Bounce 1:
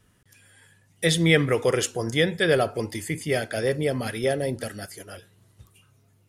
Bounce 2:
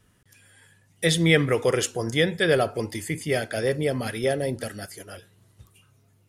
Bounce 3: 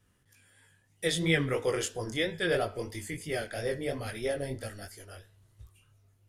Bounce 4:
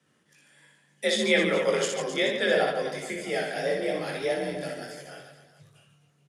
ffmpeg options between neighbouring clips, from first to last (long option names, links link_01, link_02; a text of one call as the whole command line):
ffmpeg -i in.wav -af anull out.wav
ffmpeg -i in.wav -af "asubboost=boost=8:cutoff=60,bandreject=frequency=216.5:width_type=h:width=4,bandreject=frequency=433:width_type=h:width=4,bandreject=frequency=649.5:width_type=h:width=4,bandreject=frequency=866:width_type=h:width=4,bandreject=frequency=1082.5:width_type=h:width=4,bandreject=frequency=1299:width_type=h:width=4,bandreject=frequency=1515.5:width_type=h:width=4,bandreject=frequency=1732:width_type=h:width=4,bandreject=frequency=1948.5:width_type=h:width=4,bandreject=frequency=2165:width_type=h:width=4,bandreject=frequency=2381.5:width_type=h:width=4,bandreject=frequency=2598:width_type=h:width=4,bandreject=frequency=2814.5:width_type=h:width=4,bandreject=frequency=3031:width_type=h:width=4,bandreject=frequency=3247.5:width_type=h:width=4,bandreject=frequency=3464:width_type=h:width=4,bandreject=frequency=3680.5:width_type=h:width=4,bandreject=frequency=3897:width_type=h:width=4,bandreject=frequency=4113.5:width_type=h:width=4,bandreject=frequency=4330:width_type=h:width=4,bandreject=frequency=4546.5:width_type=h:width=4,bandreject=frequency=4763:width_type=h:width=4,bandreject=frequency=4979.5:width_type=h:width=4,bandreject=frequency=5196:width_type=h:width=4,bandreject=frequency=5412.5:width_type=h:width=4,bandreject=frequency=5629:width_type=h:width=4,flanger=delay=18:depth=5.6:speed=3,volume=-4dB" out.wav
ffmpeg -i in.wav -af "afreqshift=45,highpass=220,lowpass=7800,aecho=1:1:60|144|261.6|426.2|656.7:0.631|0.398|0.251|0.158|0.1,volume=3.5dB" out.wav